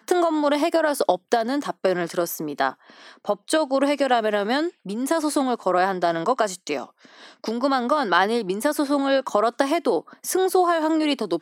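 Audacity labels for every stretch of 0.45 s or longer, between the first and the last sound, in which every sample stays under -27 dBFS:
2.700000	3.290000	silence
6.840000	7.440000	silence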